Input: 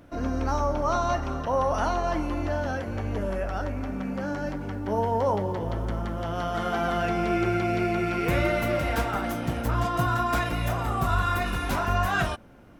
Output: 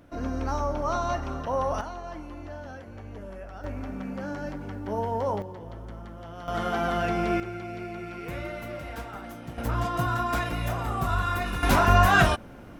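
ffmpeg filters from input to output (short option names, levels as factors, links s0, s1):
-af "asetnsamples=n=441:p=0,asendcmd='1.81 volume volume -11.5dB;3.64 volume volume -3.5dB;5.42 volume volume -11dB;6.48 volume volume -0.5dB;7.4 volume volume -11dB;9.58 volume volume -2dB;11.63 volume volume 6.5dB',volume=0.75"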